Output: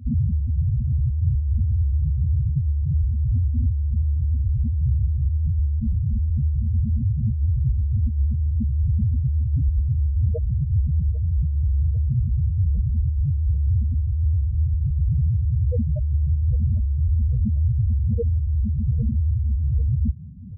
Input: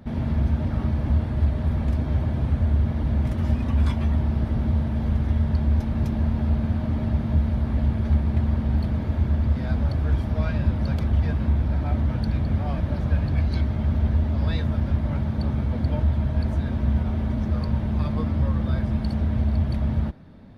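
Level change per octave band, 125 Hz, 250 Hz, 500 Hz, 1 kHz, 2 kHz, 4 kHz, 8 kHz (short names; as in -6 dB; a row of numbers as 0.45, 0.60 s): +2.5 dB, -6.5 dB, -6.5 dB, under -40 dB, under -40 dB, under -40 dB, n/a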